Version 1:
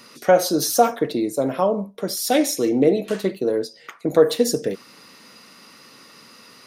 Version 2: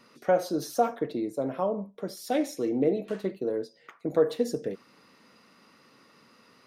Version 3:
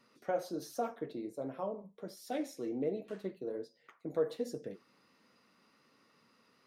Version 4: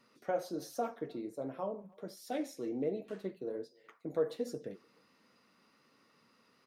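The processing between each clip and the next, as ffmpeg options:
ffmpeg -i in.wav -af "highshelf=frequency=3200:gain=-11.5,volume=-8dB" out.wav
ffmpeg -i in.wav -af "flanger=delay=6.7:depth=8.3:regen=-54:speed=1.3:shape=triangular,volume=-6dB" out.wav
ffmpeg -i in.wav -filter_complex "[0:a]asplit=2[link_01][link_02];[link_02]adelay=300,highpass=300,lowpass=3400,asoftclip=type=hard:threshold=-30.5dB,volume=-27dB[link_03];[link_01][link_03]amix=inputs=2:normalize=0" out.wav

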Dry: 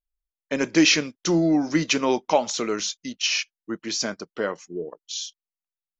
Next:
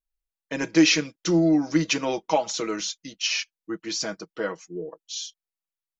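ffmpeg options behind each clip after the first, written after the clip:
ffmpeg -i in.wav -af "aecho=1:1:6.2:0.75,volume=-4dB" out.wav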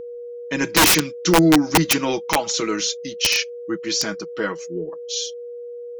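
ffmpeg -i in.wav -af "aeval=exprs='val(0)+0.02*sin(2*PI*480*n/s)':channel_layout=same,equalizer=frequency=620:width=1.7:gain=-7.5,aeval=exprs='(mod(5.62*val(0)+1,2)-1)/5.62':channel_layout=same,volume=7dB" out.wav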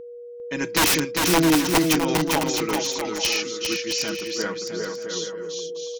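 ffmpeg -i in.wav -af "aecho=1:1:400|660|829|938.8|1010:0.631|0.398|0.251|0.158|0.1,volume=-5dB" out.wav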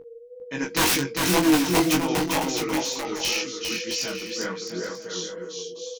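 ffmpeg -i in.wav -filter_complex "[0:a]flanger=delay=15:depth=7.5:speed=2,asplit=2[link_01][link_02];[link_02]adelay=22,volume=-6dB[link_03];[link_01][link_03]amix=inputs=2:normalize=0" out.wav

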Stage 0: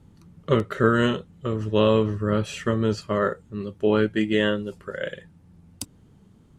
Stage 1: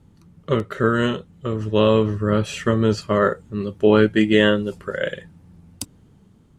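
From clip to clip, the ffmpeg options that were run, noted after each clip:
ffmpeg -i in.wav -af "dynaudnorm=framelen=600:gausssize=5:maxgain=11.5dB" out.wav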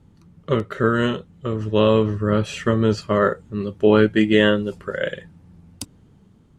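ffmpeg -i in.wav -af "highshelf=frequency=9200:gain=-7" out.wav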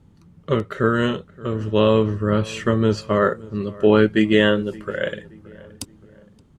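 ffmpeg -i in.wav -filter_complex "[0:a]asplit=2[link_01][link_02];[link_02]adelay=573,lowpass=frequency=1900:poles=1,volume=-21dB,asplit=2[link_03][link_04];[link_04]adelay=573,lowpass=frequency=1900:poles=1,volume=0.44,asplit=2[link_05][link_06];[link_06]adelay=573,lowpass=frequency=1900:poles=1,volume=0.44[link_07];[link_01][link_03][link_05][link_07]amix=inputs=4:normalize=0" out.wav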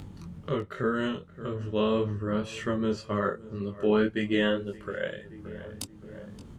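ffmpeg -i in.wav -af "acompressor=mode=upward:threshold=-19dB:ratio=2.5,flanger=delay=20:depth=3.3:speed=1.9,volume=-6.5dB" out.wav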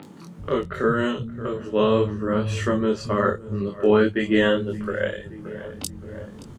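ffmpeg -i in.wav -filter_complex "[0:a]acrossover=split=180|3100[link_01][link_02][link_03];[link_03]adelay=30[link_04];[link_01]adelay=390[link_05];[link_05][link_02][link_04]amix=inputs=3:normalize=0,volume=7.5dB" out.wav

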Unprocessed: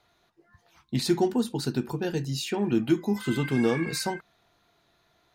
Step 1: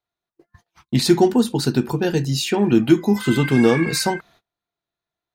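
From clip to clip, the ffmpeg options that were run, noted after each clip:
ffmpeg -i in.wav -af "agate=range=-30dB:threshold=-58dB:ratio=16:detection=peak,volume=9dB" out.wav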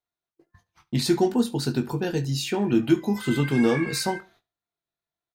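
ffmpeg -i in.wav -filter_complex "[0:a]asplit=2[link_01][link_02];[link_02]adelay=21,volume=-9dB[link_03];[link_01][link_03]amix=inputs=2:normalize=0,aecho=1:1:72|144:0.0794|0.0278,volume=-6.5dB" out.wav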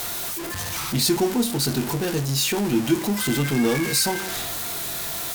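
ffmpeg -i in.wav -af "aeval=exprs='val(0)+0.5*0.0668*sgn(val(0))':channel_layout=same,aemphasis=mode=production:type=cd,volume=-2dB" out.wav

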